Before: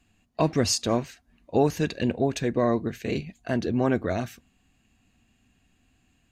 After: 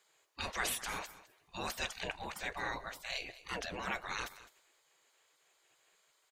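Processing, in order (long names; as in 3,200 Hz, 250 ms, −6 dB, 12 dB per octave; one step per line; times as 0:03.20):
gate on every frequency bin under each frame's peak −20 dB weak
transient designer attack −3 dB, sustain +3 dB
single-tap delay 209 ms −17 dB
level +3.5 dB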